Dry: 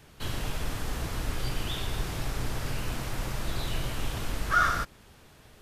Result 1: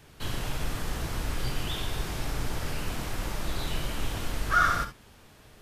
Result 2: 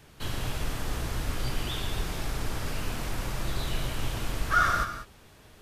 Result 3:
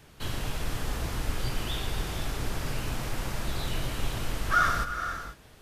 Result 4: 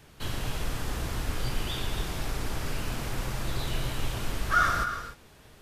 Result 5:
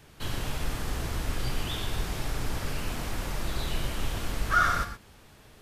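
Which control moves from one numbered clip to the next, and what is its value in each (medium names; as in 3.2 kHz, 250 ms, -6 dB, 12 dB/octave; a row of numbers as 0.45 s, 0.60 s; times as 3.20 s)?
gated-style reverb, gate: 90 ms, 220 ms, 520 ms, 320 ms, 140 ms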